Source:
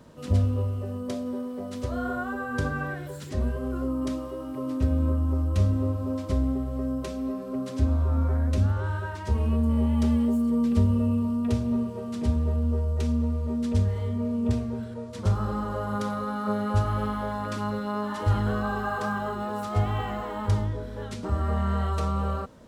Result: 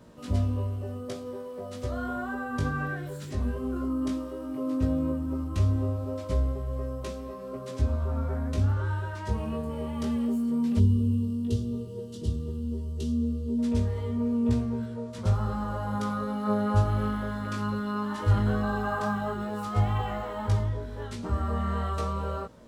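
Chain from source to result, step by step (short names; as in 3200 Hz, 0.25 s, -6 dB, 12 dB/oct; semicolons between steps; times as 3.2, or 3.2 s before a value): chorus 0.14 Hz, delay 17 ms, depth 3 ms; spectral gain 10.79–13.59, 490–2700 Hz -15 dB; gain +1.5 dB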